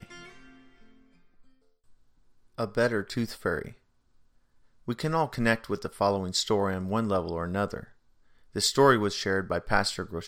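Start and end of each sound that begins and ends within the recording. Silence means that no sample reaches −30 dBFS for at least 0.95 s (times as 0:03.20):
0:02.59–0:03.68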